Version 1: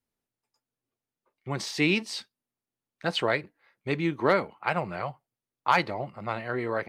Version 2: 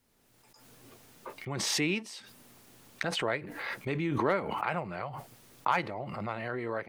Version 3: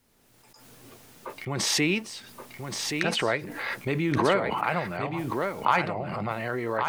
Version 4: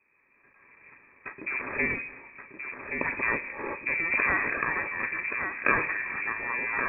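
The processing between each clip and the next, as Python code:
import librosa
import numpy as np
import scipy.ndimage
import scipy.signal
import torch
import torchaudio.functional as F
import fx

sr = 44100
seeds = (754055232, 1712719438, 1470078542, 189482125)

y1 = fx.dynamic_eq(x, sr, hz=4400.0, q=2.5, threshold_db=-50.0, ratio=4.0, max_db=-7)
y1 = fx.pre_swell(y1, sr, db_per_s=26.0)
y1 = y1 * 10.0 ** (-6.0 / 20.0)
y2 = y1 + 10.0 ** (-6.0 / 20.0) * np.pad(y1, (int(1125 * sr / 1000.0), 0))[:len(y1)]
y2 = y2 * 10.0 ** (5.0 / 20.0)
y3 = fx.lower_of_two(y2, sr, delay_ms=1.4)
y3 = fx.room_shoebox(y3, sr, seeds[0], volume_m3=2900.0, walls='mixed', distance_m=0.43)
y3 = fx.freq_invert(y3, sr, carrier_hz=2500)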